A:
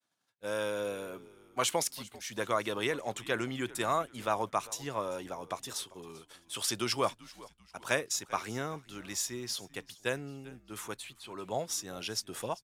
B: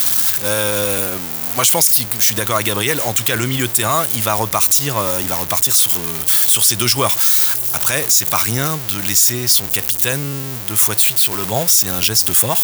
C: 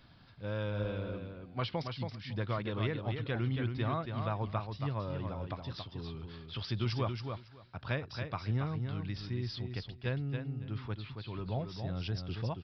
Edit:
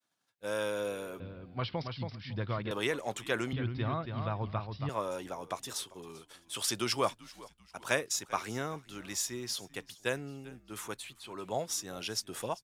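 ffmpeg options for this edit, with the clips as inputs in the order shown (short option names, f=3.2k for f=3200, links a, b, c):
-filter_complex "[2:a]asplit=2[a][b];[0:a]asplit=3[c][d][e];[c]atrim=end=1.202[f];[a]atrim=start=1.198:end=2.712[g];[d]atrim=start=2.708:end=3.532[h];[b]atrim=start=3.528:end=4.892[i];[e]atrim=start=4.888[j];[f][g]acrossfade=d=0.004:c1=hsin:c2=hsin[k];[k][h]acrossfade=d=0.004:c1=hsin:c2=hsin[l];[l][i]acrossfade=d=0.004:c1=hsin:c2=hsin[m];[m][j]acrossfade=d=0.004:c1=hsin:c2=hsin"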